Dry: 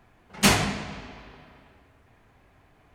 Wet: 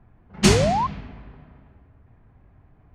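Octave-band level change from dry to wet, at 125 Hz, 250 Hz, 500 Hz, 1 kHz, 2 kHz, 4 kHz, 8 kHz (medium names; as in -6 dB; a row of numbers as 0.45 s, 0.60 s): +7.0 dB, +5.0 dB, +9.5 dB, +6.0 dB, -2.5 dB, 0.0 dB, 0.0 dB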